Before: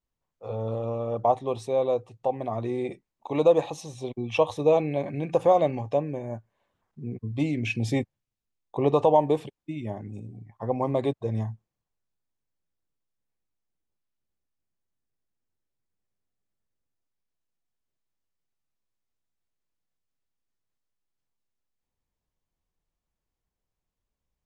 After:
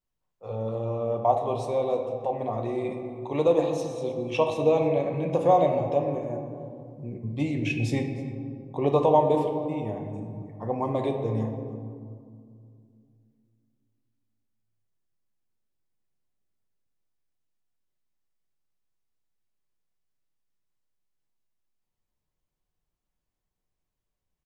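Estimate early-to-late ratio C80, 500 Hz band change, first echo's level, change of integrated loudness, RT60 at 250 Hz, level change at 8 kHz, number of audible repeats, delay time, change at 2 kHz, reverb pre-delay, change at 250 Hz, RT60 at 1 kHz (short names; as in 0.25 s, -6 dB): 7.0 dB, 0.0 dB, -22.0 dB, 0.0 dB, 3.3 s, n/a, 1, 0.31 s, -0.5 dB, 5 ms, +1.0 dB, 2.1 s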